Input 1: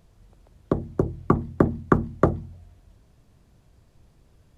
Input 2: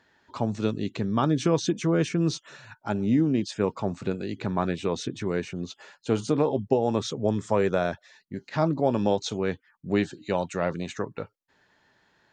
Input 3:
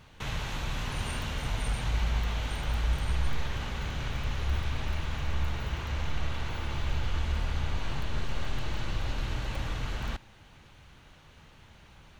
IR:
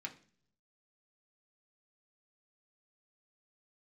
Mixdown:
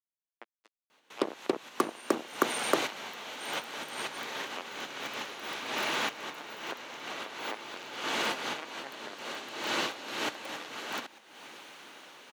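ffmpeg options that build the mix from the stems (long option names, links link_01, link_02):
-filter_complex "[0:a]adelay=500,volume=-2.5dB[link_01];[1:a]acompressor=threshold=-29dB:ratio=1.5,lowpass=2500,lowshelf=frequency=300:gain=-11,volume=-5.5dB,asplit=2[link_02][link_03];[2:a]dynaudnorm=framelen=380:gausssize=9:maxgain=11.5dB,adelay=900,volume=-0.5dB[link_04];[link_03]apad=whole_len=577386[link_05];[link_04][link_05]sidechaincompress=threshold=-53dB:ratio=3:attack=16:release=186[link_06];[link_01][link_02]amix=inputs=2:normalize=0,acrusher=bits=3:mix=0:aa=0.5,acompressor=threshold=-21dB:ratio=6,volume=0dB[link_07];[link_06][link_07]amix=inputs=2:normalize=0,highpass=frequency=280:width=0.5412,highpass=frequency=280:width=1.3066,highshelf=frequency=6300:gain=4.5"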